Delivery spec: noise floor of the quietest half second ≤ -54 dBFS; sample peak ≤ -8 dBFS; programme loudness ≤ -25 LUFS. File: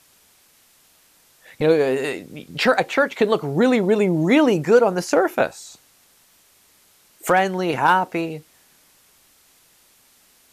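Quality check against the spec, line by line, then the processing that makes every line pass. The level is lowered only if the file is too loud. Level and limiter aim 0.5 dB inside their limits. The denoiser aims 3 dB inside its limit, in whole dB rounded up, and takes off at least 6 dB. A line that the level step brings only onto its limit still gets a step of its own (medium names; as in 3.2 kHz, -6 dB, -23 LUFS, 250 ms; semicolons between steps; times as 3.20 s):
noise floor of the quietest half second -57 dBFS: pass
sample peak -5.0 dBFS: fail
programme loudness -19.0 LUFS: fail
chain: trim -6.5 dB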